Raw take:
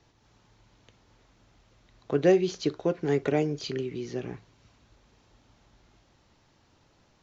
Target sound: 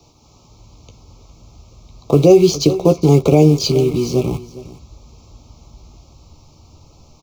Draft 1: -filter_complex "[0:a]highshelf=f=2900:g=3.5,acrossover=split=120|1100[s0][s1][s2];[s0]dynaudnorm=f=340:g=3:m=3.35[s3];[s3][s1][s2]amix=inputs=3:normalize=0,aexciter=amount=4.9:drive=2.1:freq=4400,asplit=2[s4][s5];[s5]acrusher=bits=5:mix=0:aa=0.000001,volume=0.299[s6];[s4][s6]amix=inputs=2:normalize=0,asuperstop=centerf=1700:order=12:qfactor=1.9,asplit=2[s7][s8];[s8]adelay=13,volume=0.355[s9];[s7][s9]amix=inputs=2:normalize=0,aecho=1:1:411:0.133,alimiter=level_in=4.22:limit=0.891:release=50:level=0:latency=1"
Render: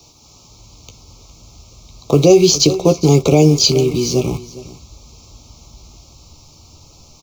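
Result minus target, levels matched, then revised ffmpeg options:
8 kHz band +8.5 dB
-filter_complex "[0:a]highshelf=f=2900:g=-8,acrossover=split=120|1100[s0][s1][s2];[s0]dynaudnorm=f=340:g=3:m=3.35[s3];[s3][s1][s2]amix=inputs=3:normalize=0,aexciter=amount=4.9:drive=2.1:freq=4400,asplit=2[s4][s5];[s5]acrusher=bits=5:mix=0:aa=0.000001,volume=0.299[s6];[s4][s6]amix=inputs=2:normalize=0,asuperstop=centerf=1700:order=12:qfactor=1.9,asplit=2[s7][s8];[s8]adelay=13,volume=0.355[s9];[s7][s9]amix=inputs=2:normalize=0,aecho=1:1:411:0.133,alimiter=level_in=4.22:limit=0.891:release=50:level=0:latency=1"

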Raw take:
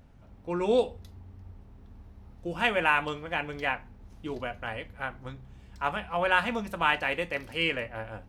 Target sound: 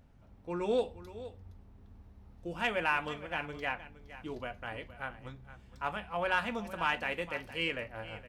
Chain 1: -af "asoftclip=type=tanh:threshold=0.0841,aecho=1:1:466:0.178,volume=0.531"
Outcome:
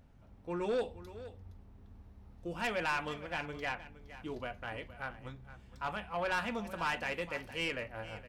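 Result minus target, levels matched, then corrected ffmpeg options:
saturation: distortion +14 dB
-af "asoftclip=type=tanh:threshold=0.316,aecho=1:1:466:0.178,volume=0.531"

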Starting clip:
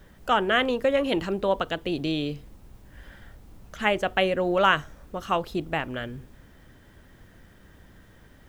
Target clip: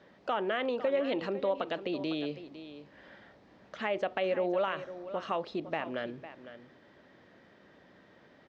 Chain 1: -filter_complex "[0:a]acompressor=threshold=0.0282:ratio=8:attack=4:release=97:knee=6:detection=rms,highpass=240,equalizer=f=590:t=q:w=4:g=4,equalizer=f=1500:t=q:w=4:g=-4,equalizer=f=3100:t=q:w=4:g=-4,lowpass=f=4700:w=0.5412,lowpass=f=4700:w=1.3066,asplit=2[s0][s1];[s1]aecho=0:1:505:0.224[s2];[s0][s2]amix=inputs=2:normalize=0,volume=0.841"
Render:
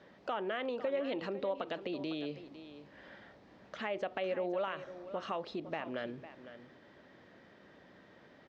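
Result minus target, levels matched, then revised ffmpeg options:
compression: peak gain reduction +5 dB
-filter_complex "[0:a]acompressor=threshold=0.0562:ratio=8:attack=4:release=97:knee=6:detection=rms,highpass=240,equalizer=f=590:t=q:w=4:g=4,equalizer=f=1500:t=q:w=4:g=-4,equalizer=f=3100:t=q:w=4:g=-4,lowpass=f=4700:w=0.5412,lowpass=f=4700:w=1.3066,asplit=2[s0][s1];[s1]aecho=0:1:505:0.224[s2];[s0][s2]amix=inputs=2:normalize=0,volume=0.841"

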